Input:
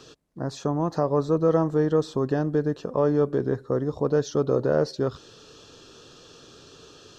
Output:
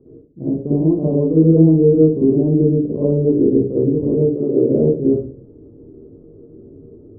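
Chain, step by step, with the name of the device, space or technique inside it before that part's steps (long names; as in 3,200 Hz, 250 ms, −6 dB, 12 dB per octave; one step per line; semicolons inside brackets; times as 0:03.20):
0:04.31–0:04.71: high-pass filter 360 Hz → 100 Hz
next room (low-pass filter 430 Hz 24 dB per octave; convolution reverb RT60 0.45 s, pre-delay 44 ms, DRR −8.5 dB)
level +2 dB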